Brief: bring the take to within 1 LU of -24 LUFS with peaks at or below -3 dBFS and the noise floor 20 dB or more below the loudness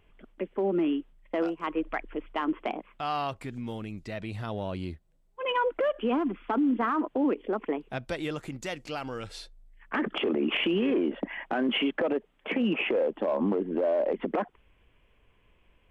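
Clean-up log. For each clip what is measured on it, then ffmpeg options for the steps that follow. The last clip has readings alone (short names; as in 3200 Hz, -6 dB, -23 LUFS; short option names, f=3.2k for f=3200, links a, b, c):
loudness -30.0 LUFS; peak -17.0 dBFS; loudness target -24.0 LUFS
-> -af "volume=6dB"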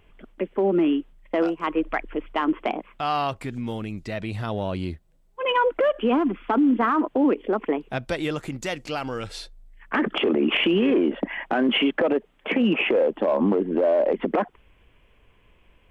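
loudness -24.0 LUFS; peak -11.0 dBFS; noise floor -59 dBFS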